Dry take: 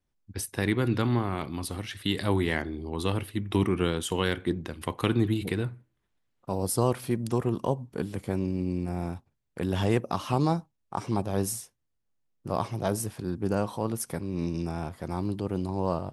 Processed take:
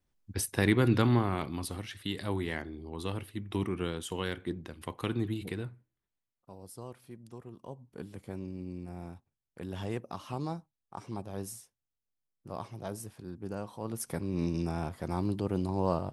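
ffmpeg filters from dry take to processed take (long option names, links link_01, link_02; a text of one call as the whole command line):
ffmpeg -i in.wav -af "volume=20dB,afade=type=out:start_time=0.99:duration=1.11:silence=0.375837,afade=type=out:start_time=5.53:duration=1.04:silence=0.237137,afade=type=in:start_time=7.61:duration=0.41:silence=0.354813,afade=type=in:start_time=13.76:duration=0.48:silence=0.316228" out.wav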